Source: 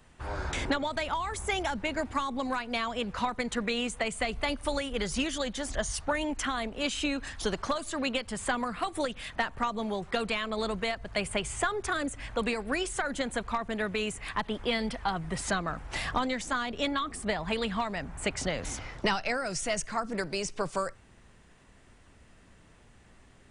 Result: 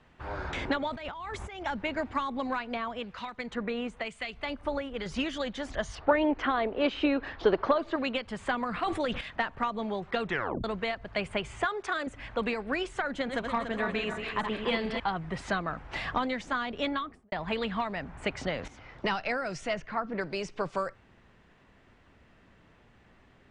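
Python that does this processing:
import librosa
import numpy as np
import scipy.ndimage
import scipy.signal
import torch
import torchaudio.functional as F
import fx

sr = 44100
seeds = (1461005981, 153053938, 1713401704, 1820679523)

y = fx.over_compress(x, sr, threshold_db=-38.0, ratio=-1.0, at=(0.9, 1.66))
y = fx.harmonic_tremolo(y, sr, hz=1.0, depth_pct=70, crossover_hz=1800.0, at=(2.74, 5.06))
y = fx.curve_eq(y, sr, hz=(220.0, 360.0, 4700.0, 9900.0), db=(0, 10, -3, -23), at=(5.95, 7.96))
y = fx.sustainer(y, sr, db_per_s=28.0, at=(8.66, 9.21))
y = fx.bass_treble(y, sr, bass_db=-14, treble_db=4, at=(11.65, 12.07))
y = fx.reverse_delay_fb(y, sr, ms=144, feedback_pct=69, wet_db=-5.5, at=(13.13, 15.0))
y = fx.studio_fade_out(y, sr, start_s=16.91, length_s=0.41)
y = fx.lowpass(y, sr, hz=3400.0, slope=12, at=(19.73, 20.2), fade=0.02)
y = fx.edit(y, sr, fx.tape_stop(start_s=10.23, length_s=0.41),
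    fx.fade_in_from(start_s=18.68, length_s=0.52, floor_db=-13.5), tone=tone)
y = scipy.signal.sosfilt(scipy.signal.butter(2, 3500.0, 'lowpass', fs=sr, output='sos'), y)
y = fx.low_shelf(y, sr, hz=73.0, db=-7.5)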